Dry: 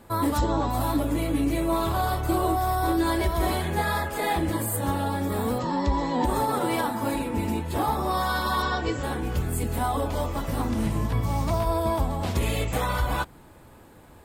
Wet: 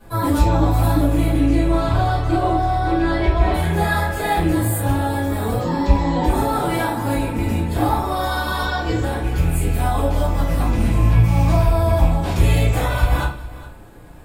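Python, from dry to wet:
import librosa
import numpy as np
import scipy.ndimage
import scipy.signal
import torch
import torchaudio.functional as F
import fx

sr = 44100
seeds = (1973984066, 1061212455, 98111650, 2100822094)

y = fx.rattle_buzz(x, sr, strikes_db=-23.0, level_db=-29.0)
y = fx.lowpass(y, sr, hz=fx.line((1.36, 8000.0), (3.53, 3500.0)), slope=12, at=(1.36, 3.53), fade=0.02)
y = y + 10.0 ** (-17.5 / 20.0) * np.pad(y, (int(411 * sr / 1000.0), 0))[:len(y)]
y = fx.room_shoebox(y, sr, seeds[0], volume_m3=33.0, walls='mixed', distance_m=2.5)
y = y * librosa.db_to_amplitude(-8.5)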